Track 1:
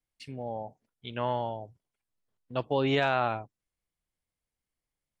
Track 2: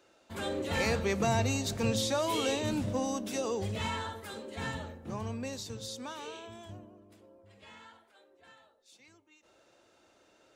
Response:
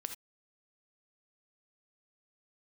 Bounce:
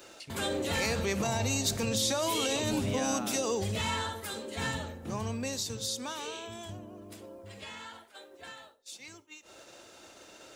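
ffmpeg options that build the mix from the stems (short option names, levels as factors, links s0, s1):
-filter_complex "[0:a]volume=0.224[s0];[1:a]alimiter=level_in=1.12:limit=0.0631:level=0:latency=1:release=47,volume=0.891,agate=range=0.0224:threshold=0.00141:ratio=3:detection=peak,volume=1.12,asplit=2[s1][s2];[s2]volume=0.2[s3];[2:a]atrim=start_sample=2205[s4];[s3][s4]afir=irnorm=-1:irlink=0[s5];[s0][s1][s5]amix=inputs=3:normalize=0,highshelf=f=3600:g=8.5,acompressor=mode=upward:threshold=0.0141:ratio=2.5"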